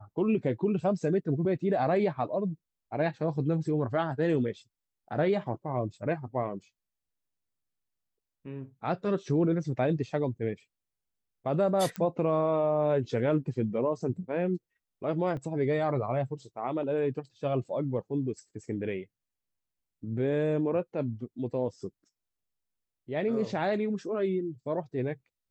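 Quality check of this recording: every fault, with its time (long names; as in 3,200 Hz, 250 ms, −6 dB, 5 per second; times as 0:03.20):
0:11.96: click −20 dBFS
0:15.37: drop-out 2.1 ms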